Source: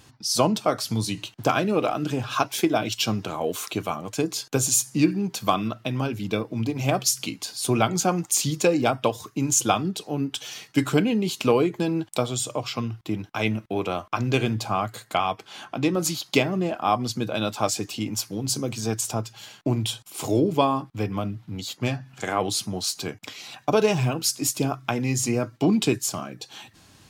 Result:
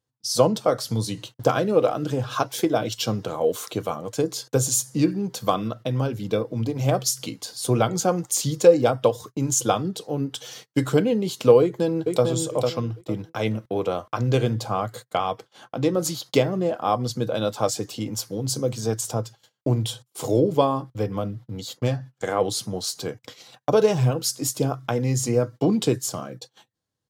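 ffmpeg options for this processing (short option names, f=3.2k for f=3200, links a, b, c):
-filter_complex "[0:a]asplit=2[a][b];[b]afade=t=in:st=11.61:d=0.01,afade=t=out:st=12.24:d=0.01,aecho=0:1:450|900|1350:0.630957|0.157739|0.0394348[c];[a][c]amix=inputs=2:normalize=0,agate=range=-31dB:threshold=-39dB:ratio=16:detection=peak,equalizer=f=125:t=o:w=0.33:g=6,equalizer=f=500:t=o:w=0.33:g=11,equalizer=f=2.5k:t=o:w=0.33:g=-8,volume=-1.5dB"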